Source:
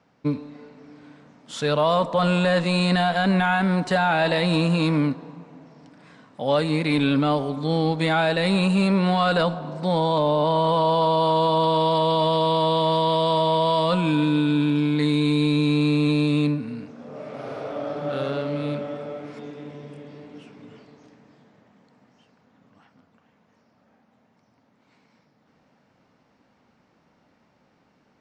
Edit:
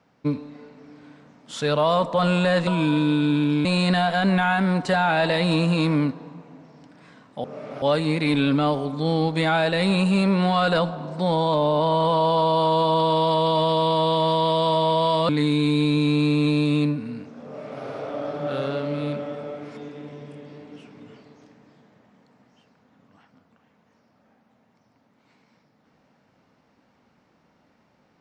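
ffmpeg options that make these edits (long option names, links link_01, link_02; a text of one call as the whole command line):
ffmpeg -i in.wav -filter_complex "[0:a]asplit=6[link_01][link_02][link_03][link_04][link_05][link_06];[link_01]atrim=end=2.672[link_07];[link_02]atrim=start=13.928:end=14.912[link_08];[link_03]atrim=start=2.668:end=6.462[link_09];[link_04]atrim=start=17.068:end=17.452[link_10];[link_05]atrim=start=6.458:end=13.932[link_11];[link_06]atrim=start=14.908[link_12];[link_07][link_08]acrossfade=duration=0.004:curve1=hsin:curve2=hsin[link_13];[link_13][link_09]acrossfade=duration=0.004:curve1=hsin:curve2=hsin[link_14];[link_14][link_10]acrossfade=duration=0.004:curve1=hsin:curve2=hsin[link_15];[link_15][link_11]acrossfade=duration=0.004:curve1=hsin:curve2=hsin[link_16];[link_16][link_12]acrossfade=duration=0.004:curve1=hsin:curve2=hsin" out.wav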